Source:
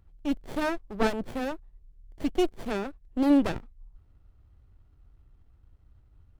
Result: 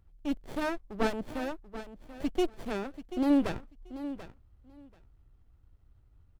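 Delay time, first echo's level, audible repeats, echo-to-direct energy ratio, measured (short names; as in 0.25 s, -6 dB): 0.736 s, -13.0 dB, 2, -13.0 dB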